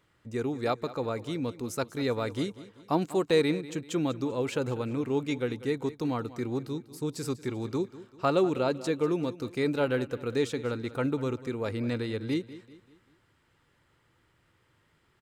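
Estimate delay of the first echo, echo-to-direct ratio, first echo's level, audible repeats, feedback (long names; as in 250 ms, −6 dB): 194 ms, −15.5 dB, −16.5 dB, 3, 42%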